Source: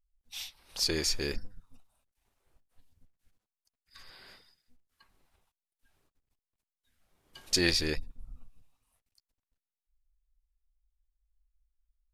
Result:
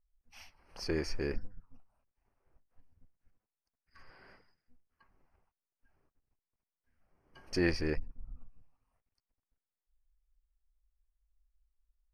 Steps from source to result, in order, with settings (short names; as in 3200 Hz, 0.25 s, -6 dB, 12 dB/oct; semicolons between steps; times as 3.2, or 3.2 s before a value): running mean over 12 samples